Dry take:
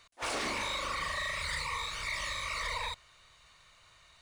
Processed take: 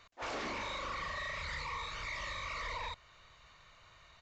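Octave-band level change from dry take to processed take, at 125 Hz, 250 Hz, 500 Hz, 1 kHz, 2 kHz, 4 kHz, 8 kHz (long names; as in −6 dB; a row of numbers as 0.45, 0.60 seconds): −2.0, −3.0, −3.0, −3.5, −5.0, −7.5, −11.5 decibels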